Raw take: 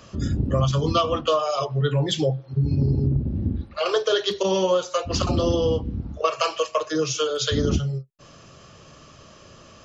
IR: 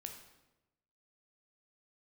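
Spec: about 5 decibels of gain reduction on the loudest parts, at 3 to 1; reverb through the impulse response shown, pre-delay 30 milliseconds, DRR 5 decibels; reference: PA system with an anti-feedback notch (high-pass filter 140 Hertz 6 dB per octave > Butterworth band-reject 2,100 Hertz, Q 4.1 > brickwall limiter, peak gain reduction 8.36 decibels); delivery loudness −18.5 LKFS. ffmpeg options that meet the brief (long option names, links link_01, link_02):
-filter_complex "[0:a]acompressor=threshold=-23dB:ratio=3,asplit=2[link_01][link_02];[1:a]atrim=start_sample=2205,adelay=30[link_03];[link_02][link_03]afir=irnorm=-1:irlink=0,volume=-1.5dB[link_04];[link_01][link_04]amix=inputs=2:normalize=0,highpass=frequency=140:poles=1,asuperstop=centerf=2100:order=8:qfactor=4.1,volume=11.5dB,alimiter=limit=-9.5dB:level=0:latency=1"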